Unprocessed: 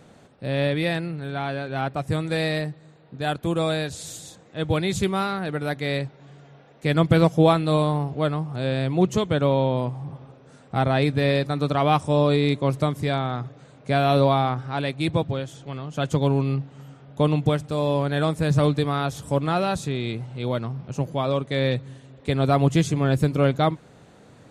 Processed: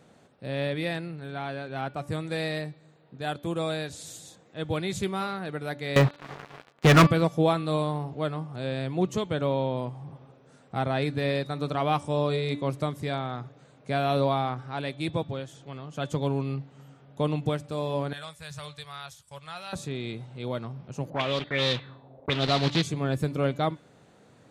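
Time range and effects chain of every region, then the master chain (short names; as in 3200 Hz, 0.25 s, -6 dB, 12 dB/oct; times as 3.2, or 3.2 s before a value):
5.96–7.07 Bessel low-pass 3300 Hz + bell 1200 Hz +10 dB 0.82 oct + sample leveller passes 5
18.13–19.73 expander -32 dBFS + passive tone stack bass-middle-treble 10-0-10
21.1–22.83 block floating point 3-bit + envelope low-pass 580–4000 Hz up, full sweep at -18 dBFS
whole clip: low shelf 73 Hz -9 dB; de-hum 289.6 Hz, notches 17; gain -5.5 dB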